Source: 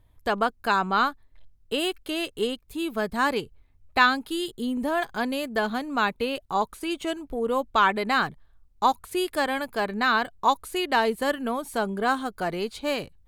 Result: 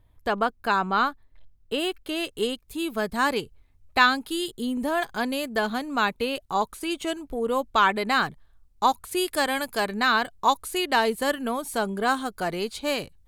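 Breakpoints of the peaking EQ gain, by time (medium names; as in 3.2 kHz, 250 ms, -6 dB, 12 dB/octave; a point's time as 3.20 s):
peaking EQ 9.4 kHz 2.3 oct
2.00 s -3 dB
2.43 s +4 dB
8.99 s +4 dB
9.75 s +12 dB
10.09 s +5.5 dB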